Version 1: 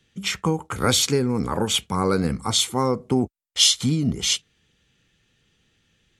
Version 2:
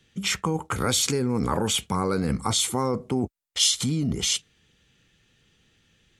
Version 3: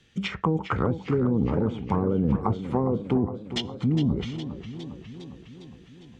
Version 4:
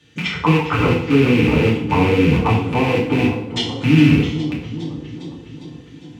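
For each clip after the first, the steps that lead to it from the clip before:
dynamic EQ 8900 Hz, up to +5 dB, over -34 dBFS, Q 0.99; in parallel at -1 dB: negative-ratio compressor -25 dBFS, ratio -0.5; on the sum: gain -6.5 dB
high shelf 9400 Hz -10 dB; treble ducked by the level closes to 450 Hz, closed at -20.5 dBFS; warbling echo 0.408 s, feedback 64%, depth 103 cents, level -11 dB; gain +2.5 dB
rattling part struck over -28 dBFS, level -19 dBFS; HPF 60 Hz; FDN reverb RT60 0.65 s, low-frequency decay 1×, high-frequency decay 0.9×, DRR -5.5 dB; gain +2 dB

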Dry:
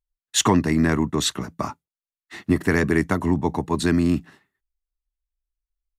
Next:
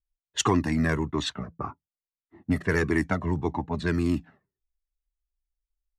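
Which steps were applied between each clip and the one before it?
low-pass opened by the level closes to 360 Hz, open at -14.5 dBFS; cascading flanger falling 1.7 Hz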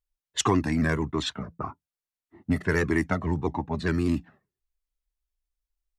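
shaped vibrato saw up 4.9 Hz, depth 100 cents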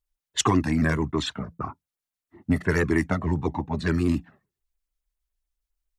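LFO notch sine 7.2 Hz 370–5800 Hz; gain +2.5 dB

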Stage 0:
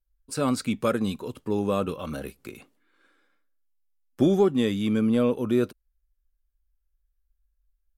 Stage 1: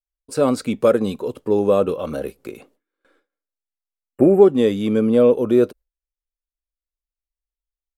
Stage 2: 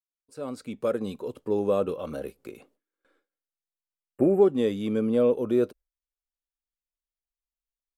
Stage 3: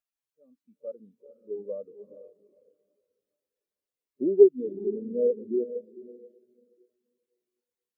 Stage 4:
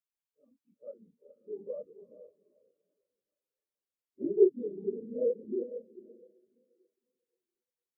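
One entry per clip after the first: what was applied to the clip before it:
gate with hold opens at -52 dBFS; spectral delete 4.06–4.42, 2900–7300 Hz; bell 500 Hz +11 dB 1.4 oct; gain +1 dB
opening faded in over 1.33 s; gain -8 dB
diffused feedback echo 0.462 s, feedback 51%, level -5 dB; requantised 6-bit, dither triangular; spectral expander 2.5:1; gain +3 dB
phase scrambler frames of 50 ms; gain -6.5 dB

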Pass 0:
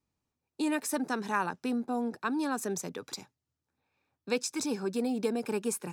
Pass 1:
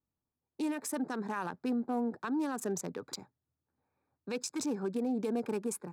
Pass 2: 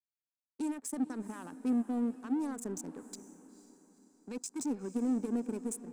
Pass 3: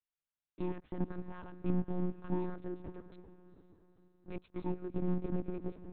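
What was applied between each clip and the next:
Wiener smoothing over 15 samples; limiter -26 dBFS, peak gain reduction 9.5 dB; AGC gain up to 6 dB; gain -6 dB
ten-band EQ 250 Hz +11 dB, 4000 Hz -5 dB, 8000 Hz +12 dB; power-law curve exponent 1.4; diffused feedback echo 0.479 s, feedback 43%, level -15 dB; gain -7 dB
monotone LPC vocoder at 8 kHz 180 Hz; gain -1 dB

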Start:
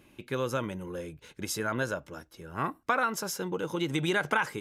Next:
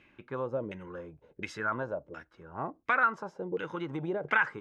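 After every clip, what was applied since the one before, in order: bell 7500 Hz +13 dB 2.7 oct; LFO low-pass saw down 1.4 Hz 440–2300 Hz; gain -6.5 dB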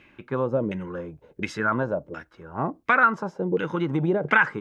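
dynamic EQ 190 Hz, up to +7 dB, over -50 dBFS, Q 0.87; gain +7 dB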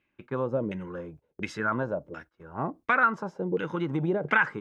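gate -45 dBFS, range -17 dB; gain -4 dB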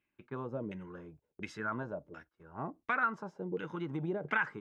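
notch 520 Hz, Q 12; gain -8.5 dB

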